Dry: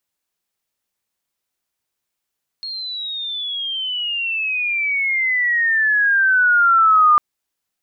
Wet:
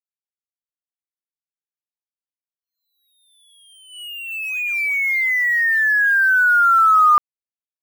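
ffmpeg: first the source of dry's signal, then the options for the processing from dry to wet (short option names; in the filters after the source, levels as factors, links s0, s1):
-f lavfi -i "aevalsrc='pow(10,(-25.5+17*t/4.55)/20)*sin(2*PI*4300*4.55/log(1200/4300)*(exp(log(1200/4300)*t/4.55)-1))':d=4.55:s=44100"
-af "agate=range=0.158:threshold=0.0794:ratio=16:detection=peak,acrusher=bits=5:mix=0:aa=0.5"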